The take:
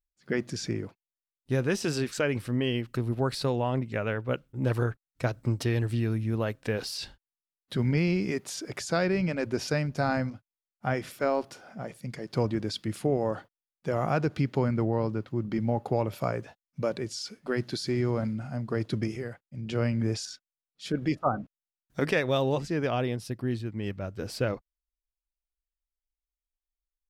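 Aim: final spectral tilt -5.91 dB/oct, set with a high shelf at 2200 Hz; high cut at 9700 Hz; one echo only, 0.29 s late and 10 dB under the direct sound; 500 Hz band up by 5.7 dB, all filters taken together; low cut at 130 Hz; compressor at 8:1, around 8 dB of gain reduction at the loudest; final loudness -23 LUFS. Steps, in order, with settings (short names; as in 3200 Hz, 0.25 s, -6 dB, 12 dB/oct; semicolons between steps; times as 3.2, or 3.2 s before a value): HPF 130 Hz; LPF 9700 Hz; bell 500 Hz +7.5 dB; high shelf 2200 Hz -8 dB; compressor 8:1, threshold -26 dBFS; echo 0.29 s -10 dB; gain +10 dB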